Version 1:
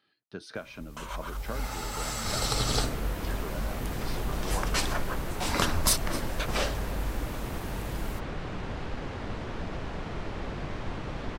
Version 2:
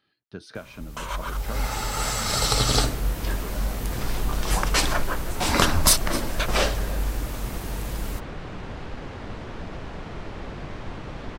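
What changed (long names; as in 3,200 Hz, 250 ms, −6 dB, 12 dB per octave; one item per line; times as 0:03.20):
speech: remove high-pass filter 200 Hz 6 dB per octave
first sound +7.0 dB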